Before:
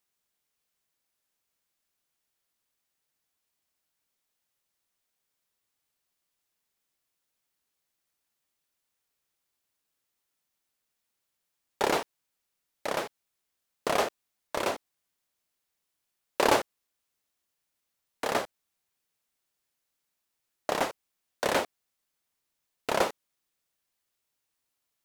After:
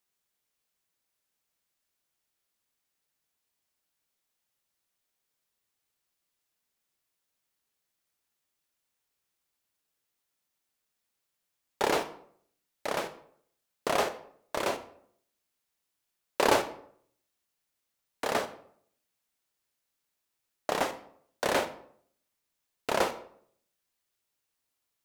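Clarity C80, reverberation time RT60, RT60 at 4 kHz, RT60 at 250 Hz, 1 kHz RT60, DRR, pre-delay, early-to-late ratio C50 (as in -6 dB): 16.5 dB, 0.60 s, 0.40 s, 0.65 s, 0.60 s, 10.0 dB, 25 ms, 13.0 dB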